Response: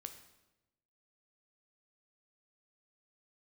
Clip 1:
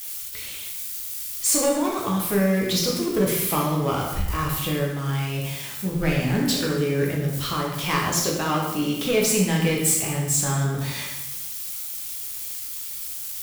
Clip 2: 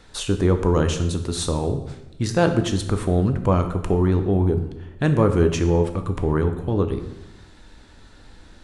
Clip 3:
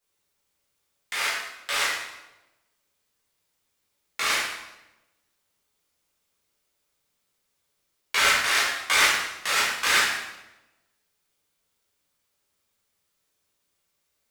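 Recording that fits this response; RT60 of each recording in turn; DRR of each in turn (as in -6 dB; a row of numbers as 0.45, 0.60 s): 2; 1.0, 1.0, 1.0 s; -3.0, 7.0, -9.5 dB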